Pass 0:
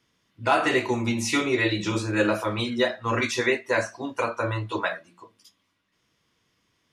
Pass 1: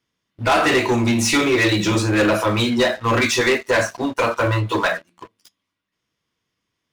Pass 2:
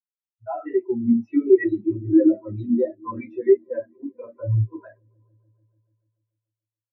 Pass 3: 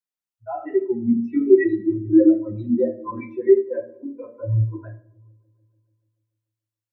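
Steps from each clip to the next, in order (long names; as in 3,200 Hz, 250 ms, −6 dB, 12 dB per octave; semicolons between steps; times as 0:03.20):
leveller curve on the samples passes 3; level −1 dB
high-frequency loss of the air 50 metres; echo that builds up and dies away 145 ms, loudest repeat 5, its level −15 dB; every bin expanded away from the loudest bin 4 to 1; level +2 dB
rectangular room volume 810 cubic metres, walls furnished, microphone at 0.89 metres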